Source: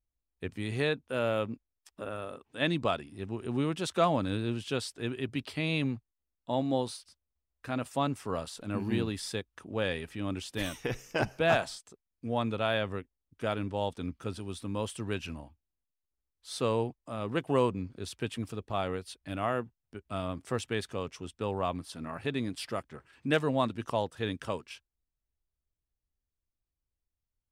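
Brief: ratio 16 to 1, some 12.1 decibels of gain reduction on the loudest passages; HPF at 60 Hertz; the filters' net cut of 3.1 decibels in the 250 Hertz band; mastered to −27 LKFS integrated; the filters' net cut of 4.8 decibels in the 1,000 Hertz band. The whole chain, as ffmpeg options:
ffmpeg -i in.wav -af "highpass=60,equalizer=frequency=250:width_type=o:gain=-3.5,equalizer=frequency=1000:width_type=o:gain=-6.5,acompressor=threshold=-35dB:ratio=16,volume=15dB" out.wav

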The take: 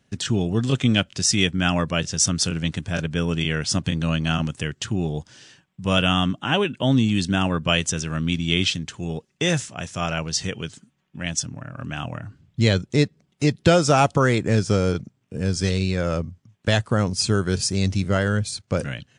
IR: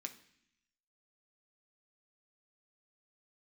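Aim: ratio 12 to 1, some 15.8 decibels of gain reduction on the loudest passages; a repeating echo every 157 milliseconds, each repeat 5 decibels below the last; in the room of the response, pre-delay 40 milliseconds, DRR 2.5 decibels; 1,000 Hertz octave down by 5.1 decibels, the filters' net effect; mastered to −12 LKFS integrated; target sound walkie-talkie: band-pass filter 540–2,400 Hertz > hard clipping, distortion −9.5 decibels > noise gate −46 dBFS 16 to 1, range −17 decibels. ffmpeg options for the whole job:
-filter_complex "[0:a]equalizer=frequency=1000:width_type=o:gain=-6.5,acompressor=threshold=-28dB:ratio=12,aecho=1:1:157|314|471|628|785|942|1099:0.562|0.315|0.176|0.0988|0.0553|0.031|0.0173,asplit=2[link_01][link_02];[1:a]atrim=start_sample=2205,adelay=40[link_03];[link_02][link_03]afir=irnorm=-1:irlink=0,volume=0.5dB[link_04];[link_01][link_04]amix=inputs=2:normalize=0,highpass=540,lowpass=2400,asoftclip=type=hard:threshold=-36.5dB,agate=range=-17dB:threshold=-46dB:ratio=16,volume=29dB"

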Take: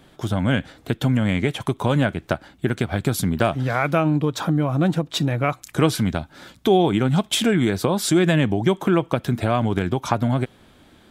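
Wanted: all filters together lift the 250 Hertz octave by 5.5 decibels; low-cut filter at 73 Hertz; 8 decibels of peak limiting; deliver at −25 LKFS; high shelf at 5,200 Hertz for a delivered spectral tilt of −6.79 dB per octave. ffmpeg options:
ffmpeg -i in.wav -af "highpass=73,equalizer=frequency=250:width_type=o:gain=7.5,highshelf=frequency=5200:gain=-8.5,volume=-4.5dB,alimiter=limit=-14dB:level=0:latency=1" out.wav

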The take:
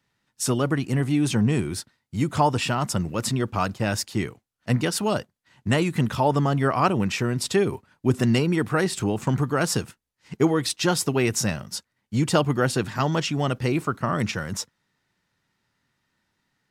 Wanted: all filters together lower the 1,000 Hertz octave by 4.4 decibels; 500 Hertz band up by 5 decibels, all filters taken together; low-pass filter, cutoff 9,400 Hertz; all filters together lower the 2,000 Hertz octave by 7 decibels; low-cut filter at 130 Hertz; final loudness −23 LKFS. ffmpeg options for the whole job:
ffmpeg -i in.wav -af "highpass=130,lowpass=9400,equalizer=frequency=500:width_type=o:gain=8.5,equalizer=frequency=1000:width_type=o:gain=-7.5,equalizer=frequency=2000:width_type=o:gain=-7.5" out.wav

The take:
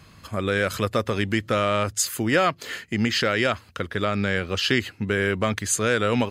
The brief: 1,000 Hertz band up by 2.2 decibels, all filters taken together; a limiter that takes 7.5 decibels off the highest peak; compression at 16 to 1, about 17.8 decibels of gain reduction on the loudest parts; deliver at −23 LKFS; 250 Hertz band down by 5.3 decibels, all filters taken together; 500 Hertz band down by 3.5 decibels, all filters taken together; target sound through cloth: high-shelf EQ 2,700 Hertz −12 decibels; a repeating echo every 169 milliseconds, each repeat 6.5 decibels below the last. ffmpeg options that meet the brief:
ffmpeg -i in.wav -af "equalizer=frequency=250:width_type=o:gain=-6,equalizer=frequency=500:width_type=o:gain=-4,equalizer=frequency=1000:width_type=o:gain=7,acompressor=threshold=-33dB:ratio=16,alimiter=level_in=1.5dB:limit=-24dB:level=0:latency=1,volume=-1.5dB,highshelf=frequency=2700:gain=-12,aecho=1:1:169|338|507|676|845|1014:0.473|0.222|0.105|0.0491|0.0231|0.0109,volume=17.5dB" out.wav

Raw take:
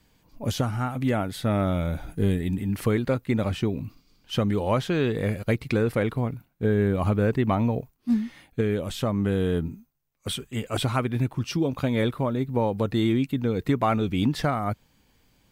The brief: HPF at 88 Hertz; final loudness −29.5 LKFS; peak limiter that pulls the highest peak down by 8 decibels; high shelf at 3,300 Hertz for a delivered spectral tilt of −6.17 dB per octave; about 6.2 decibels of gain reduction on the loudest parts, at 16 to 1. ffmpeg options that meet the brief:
ffmpeg -i in.wav -af "highpass=88,highshelf=frequency=3300:gain=-4.5,acompressor=threshold=-24dB:ratio=16,volume=3.5dB,alimiter=limit=-18.5dB:level=0:latency=1" out.wav

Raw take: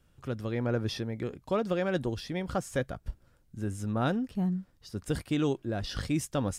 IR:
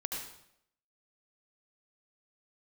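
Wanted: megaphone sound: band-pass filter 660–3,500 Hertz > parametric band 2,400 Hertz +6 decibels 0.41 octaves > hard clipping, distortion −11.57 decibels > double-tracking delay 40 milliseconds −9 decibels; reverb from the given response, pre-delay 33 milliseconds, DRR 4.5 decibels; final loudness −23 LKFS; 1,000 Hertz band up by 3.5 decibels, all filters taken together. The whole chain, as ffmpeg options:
-filter_complex "[0:a]equalizer=frequency=1000:width_type=o:gain=6.5,asplit=2[link_01][link_02];[1:a]atrim=start_sample=2205,adelay=33[link_03];[link_02][link_03]afir=irnorm=-1:irlink=0,volume=-6.5dB[link_04];[link_01][link_04]amix=inputs=2:normalize=0,highpass=660,lowpass=3500,equalizer=frequency=2400:width_type=o:width=0.41:gain=6,asoftclip=type=hard:threshold=-26.5dB,asplit=2[link_05][link_06];[link_06]adelay=40,volume=-9dB[link_07];[link_05][link_07]amix=inputs=2:normalize=0,volume=13dB"

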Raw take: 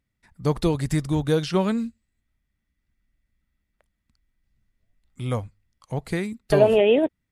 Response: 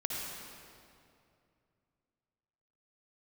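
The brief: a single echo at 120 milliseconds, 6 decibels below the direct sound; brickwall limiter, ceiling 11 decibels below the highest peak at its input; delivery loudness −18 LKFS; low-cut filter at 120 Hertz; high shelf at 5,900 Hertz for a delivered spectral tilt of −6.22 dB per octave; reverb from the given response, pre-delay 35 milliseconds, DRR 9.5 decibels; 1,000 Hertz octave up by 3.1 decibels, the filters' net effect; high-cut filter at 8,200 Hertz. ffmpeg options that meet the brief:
-filter_complex "[0:a]highpass=120,lowpass=8200,equalizer=frequency=1000:width_type=o:gain=4,highshelf=frequency=5900:gain=-3.5,alimiter=limit=-15dB:level=0:latency=1,aecho=1:1:120:0.501,asplit=2[link_01][link_02];[1:a]atrim=start_sample=2205,adelay=35[link_03];[link_02][link_03]afir=irnorm=-1:irlink=0,volume=-13.5dB[link_04];[link_01][link_04]amix=inputs=2:normalize=0,volume=7.5dB"

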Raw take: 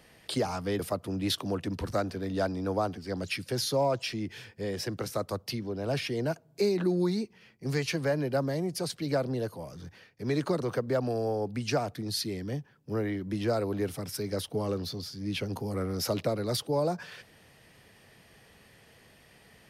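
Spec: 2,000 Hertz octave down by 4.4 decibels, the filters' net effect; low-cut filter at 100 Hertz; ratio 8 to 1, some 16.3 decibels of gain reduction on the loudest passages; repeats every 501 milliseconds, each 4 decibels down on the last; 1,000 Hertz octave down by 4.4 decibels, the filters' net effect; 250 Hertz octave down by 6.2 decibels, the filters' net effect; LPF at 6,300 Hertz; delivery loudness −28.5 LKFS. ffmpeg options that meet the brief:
ffmpeg -i in.wav -af "highpass=100,lowpass=6300,equalizer=frequency=250:width_type=o:gain=-8.5,equalizer=frequency=1000:width_type=o:gain=-5,equalizer=frequency=2000:width_type=o:gain=-4,acompressor=threshold=-44dB:ratio=8,aecho=1:1:501|1002|1503|2004|2505|3006|3507|4008|4509:0.631|0.398|0.25|0.158|0.0994|0.0626|0.0394|0.0249|0.0157,volume=17.5dB" out.wav

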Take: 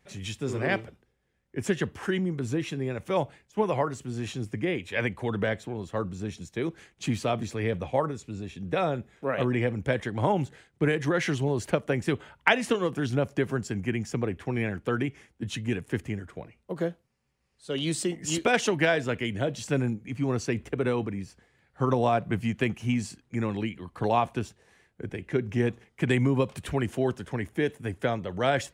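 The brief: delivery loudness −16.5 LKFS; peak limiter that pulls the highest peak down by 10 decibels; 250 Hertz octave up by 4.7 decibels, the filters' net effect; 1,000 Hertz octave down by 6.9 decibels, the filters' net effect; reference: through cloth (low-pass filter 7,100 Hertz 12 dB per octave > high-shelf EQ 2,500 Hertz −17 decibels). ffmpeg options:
ffmpeg -i in.wav -af "equalizer=frequency=250:width_type=o:gain=6.5,equalizer=frequency=1000:width_type=o:gain=-8,alimiter=limit=-16dB:level=0:latency=1,lowpass=7100,highshelf=frequency=2500:gain=-17,volume=13dB" out.wav

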